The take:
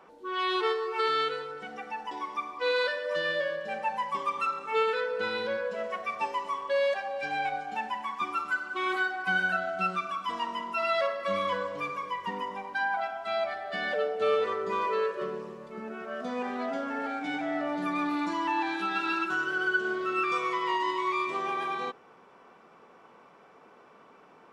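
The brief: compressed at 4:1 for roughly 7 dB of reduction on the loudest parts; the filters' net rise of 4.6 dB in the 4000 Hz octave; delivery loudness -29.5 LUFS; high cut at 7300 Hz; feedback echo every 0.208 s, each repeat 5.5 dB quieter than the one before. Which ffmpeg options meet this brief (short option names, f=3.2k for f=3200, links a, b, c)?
-af "lowpass=7.3k,equalizer=f=4k:t=o:g=6,acompressor=threshold=-30dB:ratio=4,aecho=1:1:208|416|624|832|1040|1248|1456:0.531|0.281|0.149|0.079|0.0419|0.0222|0.0118,volume=2.5dB"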